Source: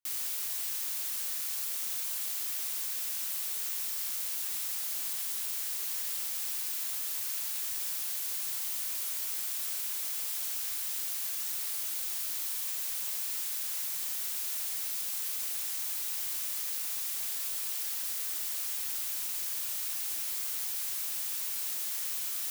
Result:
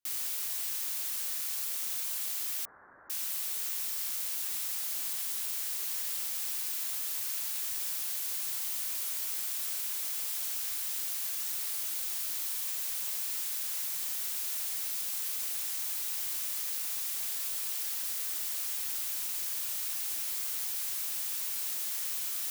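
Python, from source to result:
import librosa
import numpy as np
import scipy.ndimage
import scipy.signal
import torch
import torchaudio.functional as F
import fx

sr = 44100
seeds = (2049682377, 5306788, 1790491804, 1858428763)

y = fx.steep_lowpass(x, sr, hz=1700.0, slope=72, at=(2.65, 3.1))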